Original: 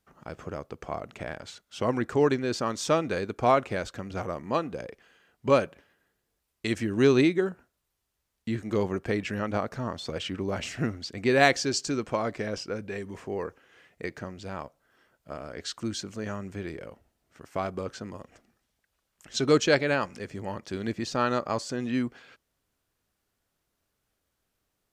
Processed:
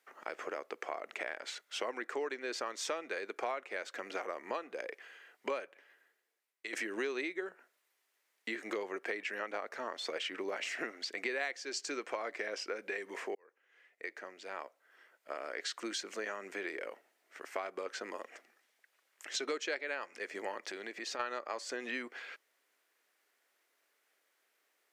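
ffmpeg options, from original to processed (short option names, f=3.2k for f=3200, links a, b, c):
-filter_complex "[0:a]asplit=3[a][b][c];[a]afade=t=out:st=20.68:d=0.02[d];[b]acompressor=threshold=-37dB:ratio=6:attack=3.2:release=140:knee=1:detection=peak,afade=t=in:st=20.68:d=0.02,afade=t=out:st=21.19:d=0.02[e];[c]afade=t=in:st=21.19:d=0.02[f];[d][e][f]amix=inputs=3:normalize=0,asplit=3[g][h][i];[g]atrim=end=6.73,asetpts=PTS-STARTPTS,afade=t=out:st=5.6:d=1.13:silence=0.105925[j];[h]atrim=start=6.73:end=13.35,asetpts=PTS-STARTPTS,afade=t=in:d=0.004:c=hsin:silence=0.105925,afade=t=out:st=6.616:d=0.004:c=hsin[k];[i]atrim=start=13.35,asetpts=PTS-STARTPTS,afade=t=in:d=2.62[l];[j][k][l]concat=n=3:v=0:a=1,highpass=f=360:w=0.5412,highpass=f=360:w=1.3066,equalizer=f=2k:t=o:w=0.76:g=9,acompressor=threshold=-37dB:ratio=6,volume=1.5dB"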